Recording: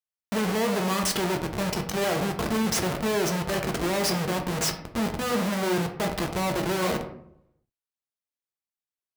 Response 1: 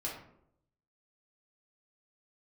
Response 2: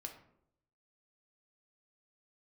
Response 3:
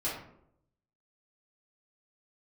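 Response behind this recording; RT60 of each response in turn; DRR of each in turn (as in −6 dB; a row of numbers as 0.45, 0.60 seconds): 2; 0.75, 0.75, 0.75 seconds; −5.0, 3.0, −10.0 decibels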